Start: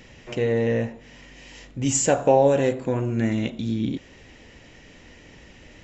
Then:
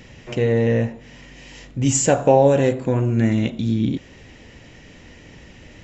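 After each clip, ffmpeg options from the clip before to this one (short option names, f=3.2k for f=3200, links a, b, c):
-af "equalizer=f=120:w=0.74:g=4.5,volume=2.5dB"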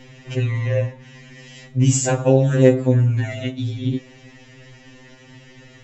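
-af "afftfilt=real='re*2.45*eq(mod(b,6),0)':imag='im*2.45*eq(mod(b,6),0)':win_size=2048:overlap=0.75,volume=2dB"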